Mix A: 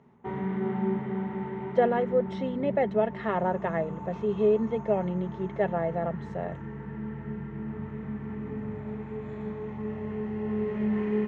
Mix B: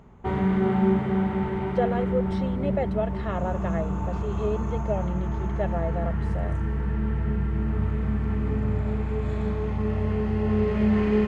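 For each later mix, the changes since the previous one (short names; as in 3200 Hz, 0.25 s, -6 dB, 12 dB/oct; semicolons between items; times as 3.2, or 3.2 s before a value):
background +11.0 dB; master: remove speaker cabinet 130–6600 Hz, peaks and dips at 140 Hz +6 dB, 230 Hz +8 dB, 410 Hz +6 dB, 920 Hz +6 dB, 1900 Hz +6 dB, 4700 Hz -9 dB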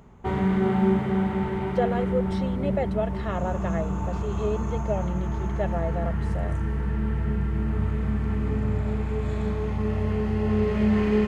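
master: add high shelf 5100 Hz +8 dB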